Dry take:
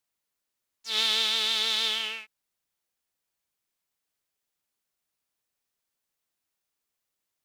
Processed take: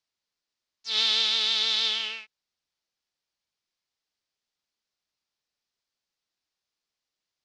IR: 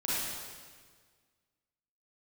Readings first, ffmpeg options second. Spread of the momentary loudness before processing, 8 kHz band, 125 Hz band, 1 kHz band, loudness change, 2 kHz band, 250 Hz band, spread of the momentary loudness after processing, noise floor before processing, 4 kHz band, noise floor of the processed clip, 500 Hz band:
13 LU, −2.5 dB, can't be measured, −2.0 dB, +1.5 dB, −1.0 dB, −2.5 dB, 15 LU, −84 dBFS, +2.0 dB, below −85 dBFS, −2.5 dB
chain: -af "lowpass=frequency=5000:width_type=q:width=2,volume=-2.5dB"

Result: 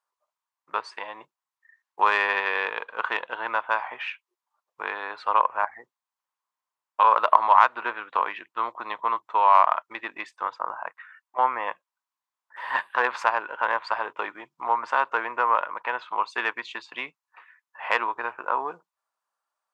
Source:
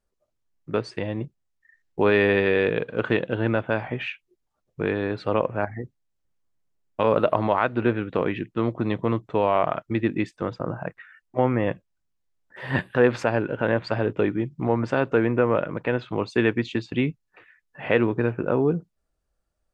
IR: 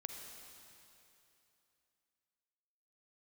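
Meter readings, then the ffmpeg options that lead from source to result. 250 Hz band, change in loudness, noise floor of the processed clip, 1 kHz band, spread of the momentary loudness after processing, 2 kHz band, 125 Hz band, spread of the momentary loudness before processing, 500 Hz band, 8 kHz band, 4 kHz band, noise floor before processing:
−22.5 dB, −0.5 dB, below −85 dBFS, +8.5 dB, 16 LU, +2.0 dB, below −35 dB, 11 LU, −11.0 dB, can't be measured, 0.0 dB, −76 dBFS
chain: -af "aeval=exprs='0.531*(cos(1*acos(clip(val(0)/0.531,-1,1)))-cos(1*PI/2))+0.0473*(cos(3*acos(clip(val(0)/0.531,-1,1)))-cos(3*PI/2))+0.00596*(cos(8*acos(clip(val(0)/0.531,-1,1)))-cos(8*PI/2))':channel_layout=same,highpass=frequency=1000:width_type=q:width=4.9"

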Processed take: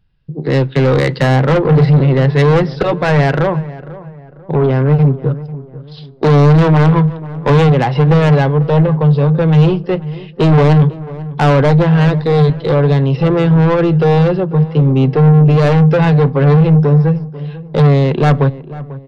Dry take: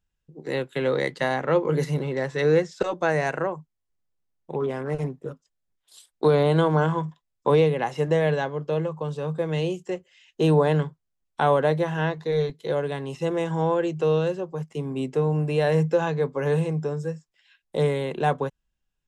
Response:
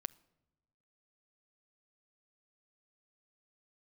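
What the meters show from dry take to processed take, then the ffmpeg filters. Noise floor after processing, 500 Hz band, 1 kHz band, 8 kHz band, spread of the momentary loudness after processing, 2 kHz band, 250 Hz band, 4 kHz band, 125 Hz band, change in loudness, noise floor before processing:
−35 dBFS, +8.5 dB, +10.0 dB, can't be measured, 11 LU, +9.5 dB, +15.5 dB, +10.0 dB, +18.0 dB, +13.0 dB, −79 dBFS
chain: -filter_complex "[0:a]equalizer=frequency=130:width_type=o:width=1.1:gain=8.5,aresample=11025,aresample=44100,asoftclip=type=tanh:threshold=-23dB,asplit=2[link_01][link_02];[link_02]adelay=493,lowpass=frequency=1500:poles=1,volume=-16.5dB,asplit=2[link_03][link_04];[link_04]adelay=493,lowpass=frequency=1500:poles=1,volume=0.4,asplit=2[link_05][link_06];[link_06]adelay=493,lowpass=frequency=1500:poles=1,volume=0.4[link_07];[link_01][link_03][link_05][link_07]amix=inputs=4:normalize=0,asplit=2[link_08][link_09];[1:a]atrim=start_sample=2205,lowshelf=frequency=350:gain=6.5[link_10];[link_09][link_10]afir=irnorm=-1:irlink=0,volume=3dB[link_11];[link_08][link_11]amix=inputs=2:normalize=0,volume=7.5dB"

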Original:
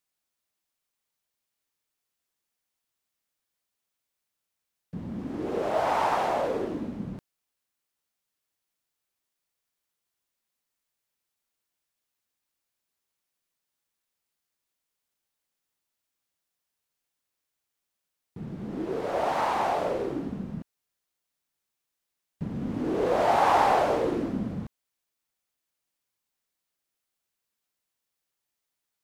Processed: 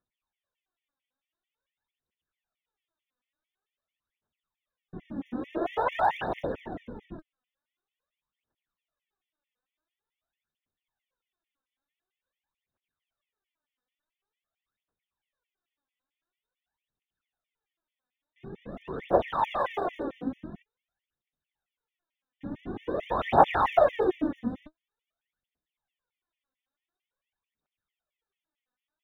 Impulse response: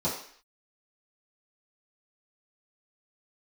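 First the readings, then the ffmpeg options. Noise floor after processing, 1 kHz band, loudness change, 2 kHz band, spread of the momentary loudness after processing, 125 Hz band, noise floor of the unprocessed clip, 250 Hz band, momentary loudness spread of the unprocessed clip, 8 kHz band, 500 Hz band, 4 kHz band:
below −85 dBFS, −1.5 dB, −1.0 dB, −1.5 dB, 21 LU, −5.0 dB, −84 dBFS, −2.5 dB, 17 LU, below −15 dB, −1.0 dB, −4.0 dB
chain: -af "aresample=8000,aresample=44100,aphaser=in_gain=1:out_gain=1:delay=4.1:decay=0.76:speed=0.47:type=triangular,afftfilt=real='re*gt(sin(2*PI*4.5*pts/sr)*(1-2*mod(floor(b*sr/1024/1800),2)),0)':imag='im*gt(sin(2*PI*4.5*pts/sr)*(1-2*mod(floor(b*sr/1024/1800),2)),0)':win_size=1024:overlap=0.75,volume=-2dB"

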